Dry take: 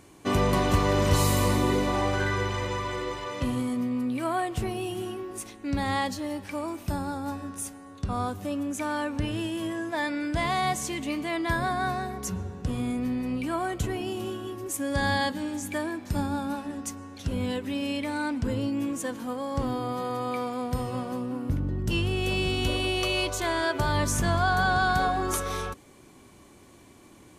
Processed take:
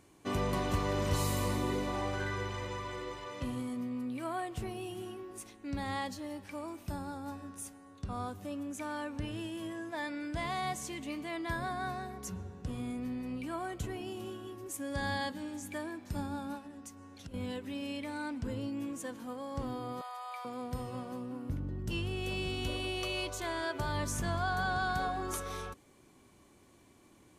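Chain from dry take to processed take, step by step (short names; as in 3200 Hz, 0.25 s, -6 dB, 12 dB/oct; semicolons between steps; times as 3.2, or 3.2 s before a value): 16.57–17.34 compressor 6:1, threshold -36 dBFS, peak gain reduction 11.5 dB; 20.01–20.45 steep high-pass 590 Hz 72 dB/oct; gain -9 dB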